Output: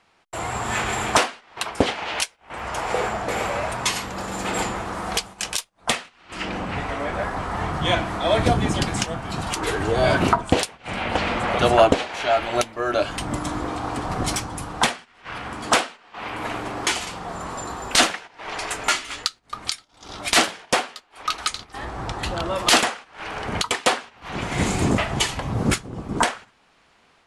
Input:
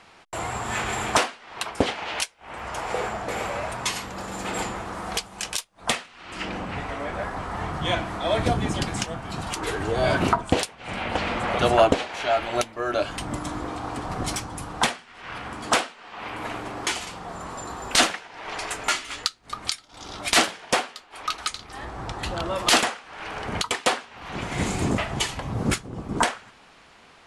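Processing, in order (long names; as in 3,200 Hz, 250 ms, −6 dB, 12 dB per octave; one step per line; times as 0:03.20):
noise gate −39 dBFS, range −10 dB
automatic gain control gain up to 4 dB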